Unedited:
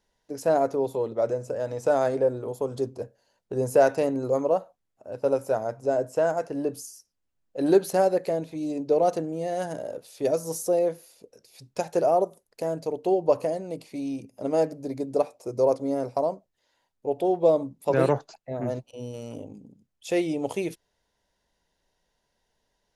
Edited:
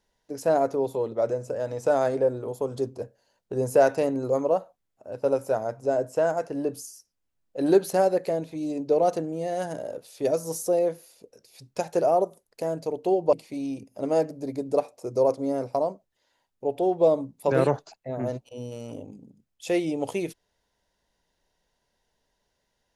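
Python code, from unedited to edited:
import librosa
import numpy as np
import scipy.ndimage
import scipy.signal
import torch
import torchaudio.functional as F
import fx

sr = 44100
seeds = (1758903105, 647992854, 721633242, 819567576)

y = fx.edit(x, sr, fx.cut(start_s=13.33, length_s=0.42), tone=tone)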